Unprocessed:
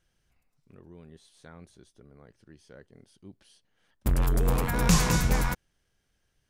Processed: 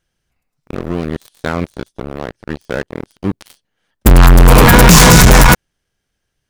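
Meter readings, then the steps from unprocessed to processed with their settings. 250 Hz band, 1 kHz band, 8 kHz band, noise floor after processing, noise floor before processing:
+19.0 dB, +21.5 dB, +19.5 dB, -73 dBFS, -75 dBFS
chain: bass shelf 81 Hz -3.5 dB; in parallel at +0.5 dB: peak limiter -19.5 dBFS, peak gain reduction 8.5 dB; on the sum: waveshaping leveller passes 5; trim +6.5 dB

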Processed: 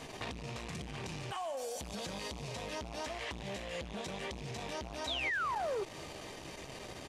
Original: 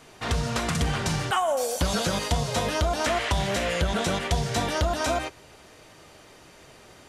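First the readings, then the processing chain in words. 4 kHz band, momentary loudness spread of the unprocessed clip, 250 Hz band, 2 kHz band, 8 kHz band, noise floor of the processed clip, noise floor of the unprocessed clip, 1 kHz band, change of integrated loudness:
-11.5 dB, 2 LU, -14.5 dB, -9.5 dB, -15.0 dB, -48 dBFS, -51 dBFS, -12.5 dB, -14.0 dB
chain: rattle on loud lows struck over -35 dBFS, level -24 dBFS; doubling 15 ms -11 dB; peak limiter -22 dBFS, peak gain reduction 9.5 dB; peaking EQ 1.4 kHz -11.5 dB 0.22 oct; compression 10:1, threshold -42 dBFS, peak gain reduction 15.5 dB; feedback echo behind a high-pass 146 ms, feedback 52%, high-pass 2.9 kHz, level -9 dB; painted sound fall, 5.07–5.84 s, 370–4000 Hz -39 dBFS; treble shelf 9.8 kHz -8.5 dB; transformer saturation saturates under 730 Hz; trim +5.5 dB

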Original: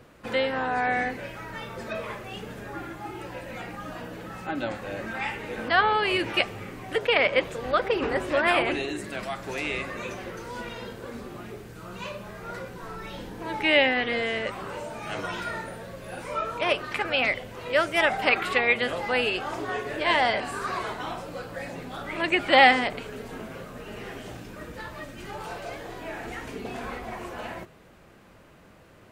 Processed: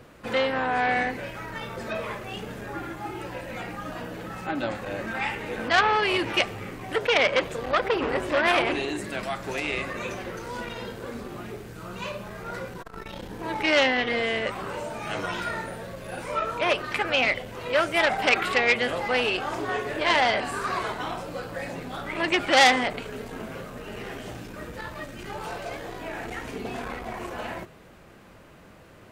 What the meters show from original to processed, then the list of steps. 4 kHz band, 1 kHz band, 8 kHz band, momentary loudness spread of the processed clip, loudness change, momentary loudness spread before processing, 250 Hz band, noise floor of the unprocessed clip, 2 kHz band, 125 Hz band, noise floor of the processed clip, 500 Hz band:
+1.5 dB, +0.5 dB, +6.0 dB, 16 LU, 0.0 dB, 17 LU, +1.0 dB, -53 dBFS, +0.5 dB, +1.5 dB, -50 dBFS, +0.5 dB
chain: transformer saturation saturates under 3.5 kHz; trim +3 dB

